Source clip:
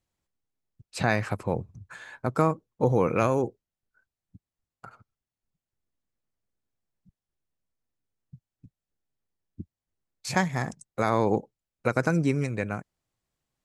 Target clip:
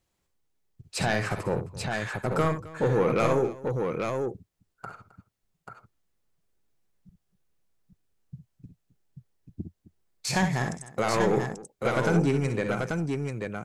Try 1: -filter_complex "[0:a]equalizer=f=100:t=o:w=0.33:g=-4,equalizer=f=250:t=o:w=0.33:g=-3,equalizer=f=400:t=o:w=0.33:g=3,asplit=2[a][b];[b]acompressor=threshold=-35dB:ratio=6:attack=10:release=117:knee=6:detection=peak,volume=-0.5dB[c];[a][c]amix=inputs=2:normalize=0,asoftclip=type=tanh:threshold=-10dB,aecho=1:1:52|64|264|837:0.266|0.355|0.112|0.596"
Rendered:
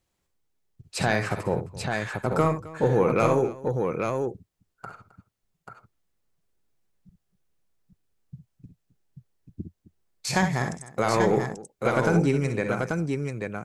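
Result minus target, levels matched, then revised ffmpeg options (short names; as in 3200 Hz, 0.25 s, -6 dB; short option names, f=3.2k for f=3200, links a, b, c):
soft clip: distortion -9 dB
-filter_complex "[0:a]equalizer=f=100:t=o:w=0.33:g=-4,equalizer=f=250:t=o:w=0.33:g=-3,equalizer=f=400:t=o:w=0.33:g=3,asplit=2[a][b];[b]acompressor=threshold=-35dB:ratio=6:attack=10:release=117:knee=6:detection=peak,volume=-0.5dB[c];[a][c]amix=inputs=2:normalize=0,asoftclip=type=tanh:threshold=-17.5dB,aecho=1:1:52|64|264|837:0.266|0.355|0.112|0.596"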